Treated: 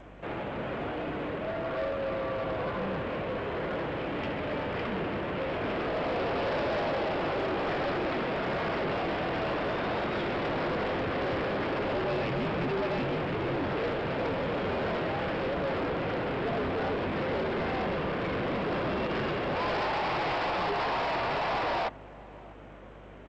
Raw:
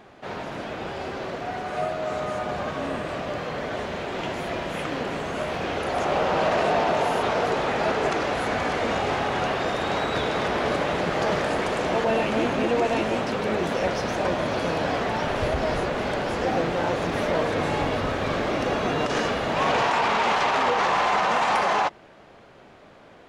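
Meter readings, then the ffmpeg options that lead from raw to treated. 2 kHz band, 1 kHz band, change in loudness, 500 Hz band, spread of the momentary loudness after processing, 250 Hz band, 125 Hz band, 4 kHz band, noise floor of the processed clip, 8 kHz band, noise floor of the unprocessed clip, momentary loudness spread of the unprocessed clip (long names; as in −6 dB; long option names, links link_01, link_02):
−6.5 dB, −8.0 dB, −6.0 dB, −5.5 dB, 5 LU, −4.0 dB, −3.5 dB, −7.5 dB, −47 dBFS, below −20 dB, −50 dBFS, 9 LU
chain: -filter_complex "[0:a]asplit=2[link_01][link_02];[link_02]acrusher=samples=18:mix=1:aa=0.000001:lfo=1:lforange=18:lforate=1,volume=-9dB[link_03];[link_01][link_03]amix=inputs=2:normalize=0,highpass=frequency=170:width_type=q:width=0.5412,highpass=frequency=170:width_type=q:width=1.307,lowpass=frequency=3300:width_type=q:width=0.5176,lowpass=frequency=3300:width_type=q:width=0.7071,lowpass=frequency=3300:width_type=q:width=1.932,afreqshift=-82,aresample=11025,asoftclip=type=tanh:threshold=-26dB,aresample=44100,asplit=2[link_04][link_05];[link_05]adelay=645,lowpass=frequency=860:poles=1,volume=-19.5dB,asplit=2[link_06][link_07];[link_07]adelay=645,lowpass=frequency=860:poles=1,volume=0.34,asplit=2[link_08][link_09];[link_09]adelay=645,lowpass=frequency=860:poles=1,volume=0.34[link_10];[link_04][link_06][link_08][link_10]amix=inputs=4:normalize=0,aeval=exprs='val(0)+0.00316*(sin(2*PI*50*n/s)+sin(2*PI*2*50*n/s)/2+sin(2*PI*3*50*n/s)/3+sin(2*PI*4*50*n/s)/4+sin(2*PI*5*50*n/s)/5)':channel_layout=same,volume=-1.5dB" -ar 16000 -c:a g722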